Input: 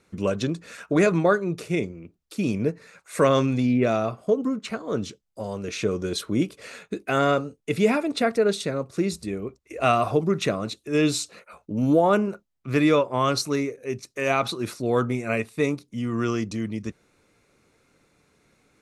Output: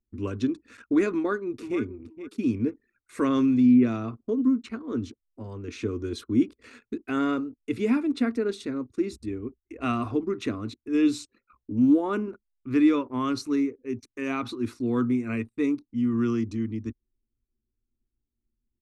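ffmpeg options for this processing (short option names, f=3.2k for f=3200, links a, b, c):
-filter_complex "[0:a]asplit=2[a][b];[b]afade=t=in:st=1.15:d=0.01,afade=t=out:st=1.8:d=0.01,aecho=0:1:470|940|1410:0.266073|0.0532145|0.0106429[c];[a][c]amix=inputs=2:normalize=0,firequalizer=gain_entry='entry(110,0);entry(160,-27);entry(240,5);entry(590,-18);entry(1000,-7);entry(10000,1)':delay=0.05:min_phase=1,anlmdn=0.0158,aemphasis=mode=reproduction:type=75fm"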